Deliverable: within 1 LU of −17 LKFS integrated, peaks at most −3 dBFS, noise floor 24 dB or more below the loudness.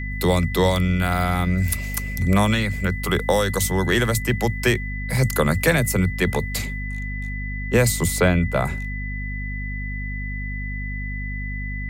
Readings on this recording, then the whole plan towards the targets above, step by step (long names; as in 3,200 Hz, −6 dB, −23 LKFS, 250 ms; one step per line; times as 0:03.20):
mains hum 50 Hz; hum harmonics up to 250 Hz; level of the hum −27 dBFS; interfering tone 2,000 Hz; level of the tone −32 dBFS; integrated loudness −22.5 LKFS; sample peak −5.5 dBFS; target loudness −17.0 LKFS
→ hum removal 50 Hz, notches 5
notch filter 2,000 Hz, Q 30
level +5.5 dB
brickwall limiter −3 dBFS